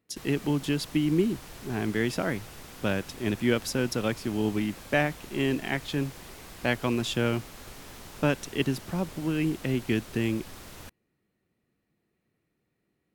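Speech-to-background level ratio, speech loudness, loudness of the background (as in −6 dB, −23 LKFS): 16.0 dB, −29.0 LKFS, −45.0 LKFS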